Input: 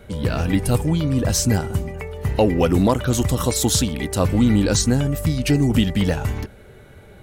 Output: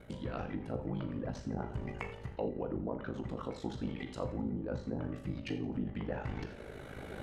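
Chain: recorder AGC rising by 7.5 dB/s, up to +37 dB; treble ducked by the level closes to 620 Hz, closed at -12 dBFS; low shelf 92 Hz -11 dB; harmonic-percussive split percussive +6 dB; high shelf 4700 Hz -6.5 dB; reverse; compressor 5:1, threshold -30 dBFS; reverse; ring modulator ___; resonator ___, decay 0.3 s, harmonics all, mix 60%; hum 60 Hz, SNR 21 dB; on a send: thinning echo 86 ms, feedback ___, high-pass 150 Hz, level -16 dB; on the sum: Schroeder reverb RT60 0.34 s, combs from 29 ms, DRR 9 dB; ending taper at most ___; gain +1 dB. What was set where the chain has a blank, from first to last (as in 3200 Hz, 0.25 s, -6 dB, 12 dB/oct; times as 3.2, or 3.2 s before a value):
26 Hz, 64 Hz, 39%, 150 dB/s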